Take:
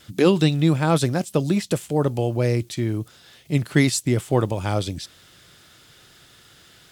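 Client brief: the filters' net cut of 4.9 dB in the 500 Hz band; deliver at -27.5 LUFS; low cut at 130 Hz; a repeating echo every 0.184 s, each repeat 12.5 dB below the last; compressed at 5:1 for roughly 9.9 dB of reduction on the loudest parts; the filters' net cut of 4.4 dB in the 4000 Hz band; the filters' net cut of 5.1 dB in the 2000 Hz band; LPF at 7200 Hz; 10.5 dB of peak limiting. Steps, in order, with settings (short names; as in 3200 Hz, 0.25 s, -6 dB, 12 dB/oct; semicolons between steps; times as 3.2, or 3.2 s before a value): HPF 130 Hz; LPF 7200 Hz; bell 500 Hz -6 dB; bell 2000 Hz -5 dB; bell 4000 Hz -3.5 dB; compressor 5:1, threshold -26 dBFS; limiter -25 dBFS; feedback echo 0.184 s, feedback 24%, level -12.5 dB; gain +8 dB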